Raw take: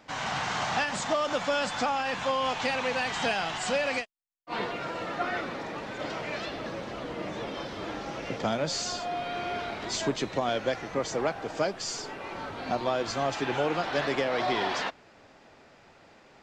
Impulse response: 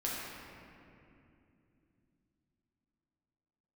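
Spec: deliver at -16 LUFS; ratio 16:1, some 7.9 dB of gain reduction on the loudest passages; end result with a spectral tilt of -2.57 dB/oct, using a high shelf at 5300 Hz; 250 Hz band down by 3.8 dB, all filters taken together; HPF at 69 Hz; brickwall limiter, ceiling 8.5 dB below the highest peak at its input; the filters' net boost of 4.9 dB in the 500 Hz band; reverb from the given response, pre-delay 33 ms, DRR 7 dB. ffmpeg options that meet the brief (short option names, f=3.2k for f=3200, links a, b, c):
-filter_complex "[0:a]highpass=69,equalizer=f=250:t=o:g=-8,equalizer=f=500:t=o:g=7.5,highshelf=f=5.3k:g=4.5,acompressor=threshold=-27dB:ratio=16,alimiter=level_in=2.5dB:limit=-24dB:level=0:latency=1,volume=-2.5dB,asplit=2[a][b];[1:a]atrim=start_sample=2205,adelay=33[c];[b][c]afir=irnorm=-1:irlink=0,volume=-12dB[d];[a][d]amix=inputs=2:normalize=0,volume=18.5dB"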